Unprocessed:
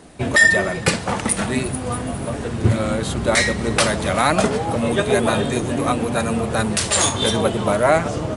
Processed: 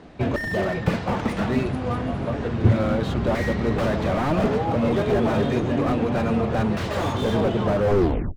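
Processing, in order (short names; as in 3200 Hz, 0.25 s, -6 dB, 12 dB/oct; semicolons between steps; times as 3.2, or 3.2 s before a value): tape stop at the end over 0.62 s; air absorption 190 m; slew limiter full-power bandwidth 64 Hz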